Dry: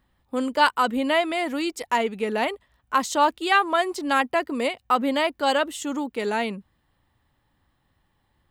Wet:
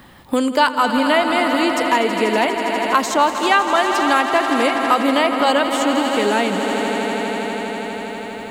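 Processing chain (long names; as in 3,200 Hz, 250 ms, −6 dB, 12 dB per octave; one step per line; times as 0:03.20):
echo that builds up and dies away 81 ms, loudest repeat 5, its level −13 dB
multiband upward and downward compressor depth 70%
level +5 dB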